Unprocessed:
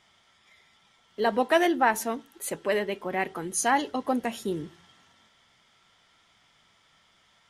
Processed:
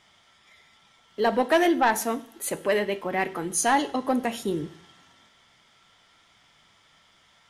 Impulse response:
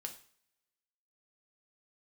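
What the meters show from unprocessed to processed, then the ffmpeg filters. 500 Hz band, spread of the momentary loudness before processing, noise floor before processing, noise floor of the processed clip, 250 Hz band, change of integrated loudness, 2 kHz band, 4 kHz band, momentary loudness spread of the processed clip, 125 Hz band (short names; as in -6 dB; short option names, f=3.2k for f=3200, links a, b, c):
+2.0 dB, 12 LU, -64 dBFS, -61 dBFS, +3.0 dB, +2.0 dB, +1.0 dB, +2.0 dB, 10 LU, +3.0 dB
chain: -filter_complex "[0:a]asoftclip=type=tanh:threshold=-15dB,asplit=2[a][b];[1:a]atrim=start_sample=2205,asetrate=33075,aresample=44100[c];[b][c]afir=irnorm=-1:irlink=0,volume=-4.5dB[d];[a][d]amix=inputs=2:normalize=0"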